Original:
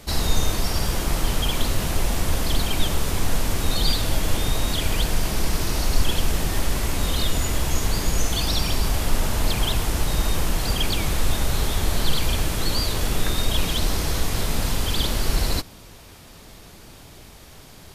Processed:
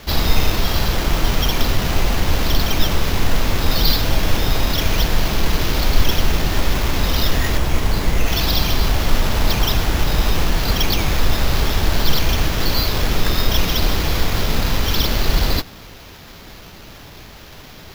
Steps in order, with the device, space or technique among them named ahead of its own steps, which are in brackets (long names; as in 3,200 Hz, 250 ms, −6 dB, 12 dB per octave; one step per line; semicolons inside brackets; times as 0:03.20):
0:07.57–0:08.27: high-shelf EQ 6,100 Hz −10 dB
early 8-bit sampler (sample-rate reduction 8,800 Hz, jitter 0%; bit reduction 8 bits)
level +5 dB